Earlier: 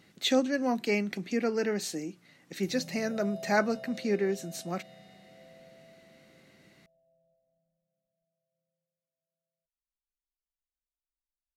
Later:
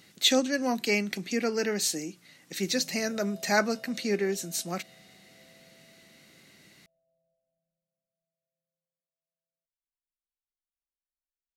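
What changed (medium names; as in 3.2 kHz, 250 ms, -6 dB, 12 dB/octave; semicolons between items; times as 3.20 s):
background -7.0 dB; master: add treble shelf 2.8 kHz +11 dB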